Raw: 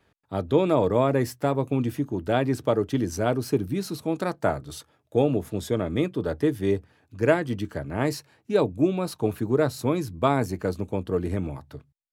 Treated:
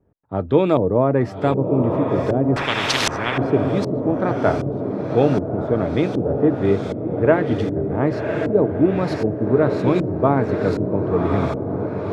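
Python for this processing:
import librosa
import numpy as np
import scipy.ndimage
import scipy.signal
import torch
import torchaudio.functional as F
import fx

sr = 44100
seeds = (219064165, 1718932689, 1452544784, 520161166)

y = fx.echo_diffused(x, sr, ms=1127, feedback_pct=63, wet_db=-5.0)
y = fx.filter_lfo_lowpass(y, sr, shape='saw_up', hz=1.3, low_hz=420.0, high_hz=6000.0, q=0.72)
y = fx.spectral_comp(y, sr, ratio=10.0, at=(2.56, 3.38))
y = F.gain(torch.from_numpy(y), 5.0).numpy()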